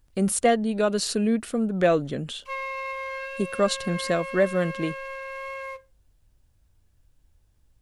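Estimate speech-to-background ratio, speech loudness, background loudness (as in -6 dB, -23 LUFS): 9.0 dB, -25.0 LUFS, -34.0 LUFS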